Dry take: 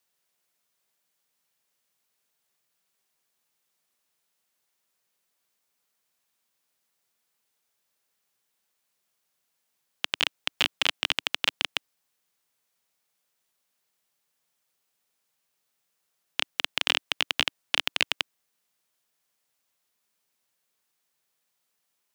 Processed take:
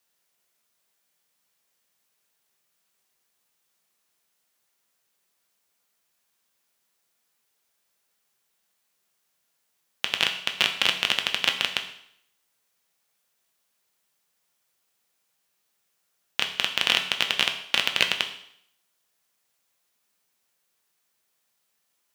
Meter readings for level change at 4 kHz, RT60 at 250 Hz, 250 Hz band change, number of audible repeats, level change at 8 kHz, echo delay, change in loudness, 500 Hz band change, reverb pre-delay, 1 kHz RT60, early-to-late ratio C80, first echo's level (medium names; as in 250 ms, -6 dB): +3.5 dB, 0.70 s, +3.5 dB, no echo, +3.5 dB, no echo, +3.5 dB, +3.5 dB, 6 ms, 0.70 s, 12.5 dB, no echo